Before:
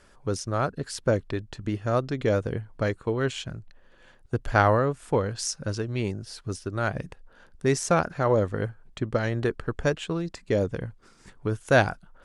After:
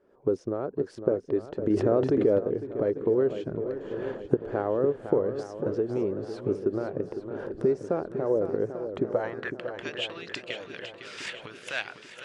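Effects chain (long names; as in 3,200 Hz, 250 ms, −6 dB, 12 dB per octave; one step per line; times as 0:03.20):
camcorder AGC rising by 52 dB per second
band-pass filter sweep 400 Hz → 2,800 Hz, 0:09.02–0:09.60
on a send: feedback echo with a long and a short gap by turns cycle 842 ms, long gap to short 1.5 to 1, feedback 49%, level −9.5 dB
0:01.70–0:02.39: on the sum: envelope flattener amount 70%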